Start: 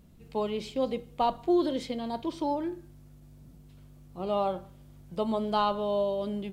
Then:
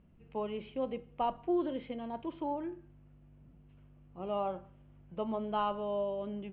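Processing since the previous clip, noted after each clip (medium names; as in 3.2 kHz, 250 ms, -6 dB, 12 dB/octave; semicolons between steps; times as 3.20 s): elliptic low-pass 2.9 kHz, stop band 60 dB; trim -5.5 dB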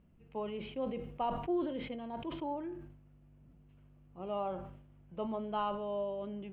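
decay stretcher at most 66 dB/s; trim -2.5 dB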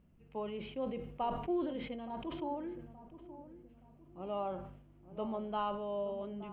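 filtered feedback delay 872 ms, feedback 44%, low-pass 810 Hz, level -12.5 dB; trim -1 dB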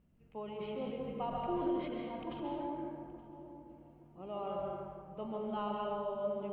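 plate-style reverb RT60 1.8 s, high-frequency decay 0.55×, pre-delay 120 ms, DRR -1.5 dB; trim -4 dB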